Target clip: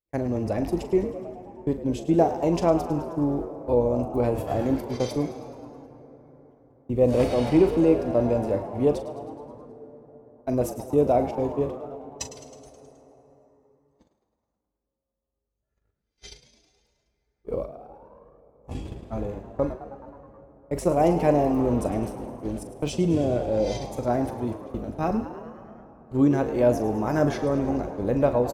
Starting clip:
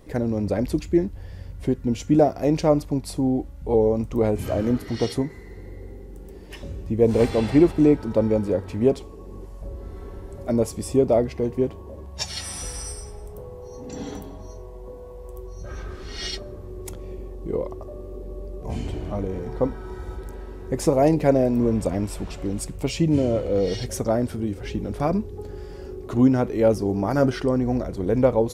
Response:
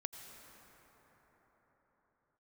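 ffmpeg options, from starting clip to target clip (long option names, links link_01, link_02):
-filter_complex "[0:a]agate=range=-47dB:threshold=-27dB:ratio=16:detection=peak,asetrate=48091,aresample=44100,atempo=0.917004,asplit=8[link_01][link_02][link_03][link_04][link_05][link_06][link_07][link_08];[link_02]adelay=106,afreqshift=87,volume=-13.5dB[link_09];[link_03]adelay=212,afreqshift=174,volume=-17.5dB[link_10];[link_04]adelay=318,afreqshift=261,volume=-21.5dB[link_11];[link_05]adelay=424,afreqshift=348,volume=-25.5dB[link_12];[link_06]adelay=530,afreqshift=435,volume=-29.6dB[link_13];[link_07]adelay=636,afreqshift=522,volume=-33.6dB[link_14];[link_08]adelay=742,afreqshift=609,volume=-37.6dB[link_15];[link_01][link_09][link_10][link_11][link_12][link_13][link_14][link_15]amix=inputs=8:normalize=0,asplit=2[link_16][link_17];[1:a]atrim=start_sample=2205,adelay=41[link_18];[link_17][link_18]afir=irnorm=-1:irlink=0,volume=-8dB[link_19];[link_16][link_19]amix=inputs=2:normalize=0,volume=-3dB"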